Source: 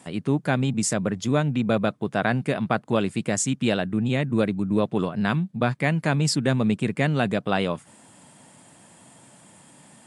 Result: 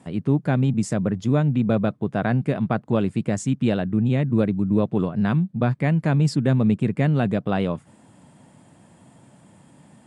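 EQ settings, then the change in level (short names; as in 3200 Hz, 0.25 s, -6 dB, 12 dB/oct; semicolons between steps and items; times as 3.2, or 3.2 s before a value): tilt -2.5 dB/oct; -2.5 dB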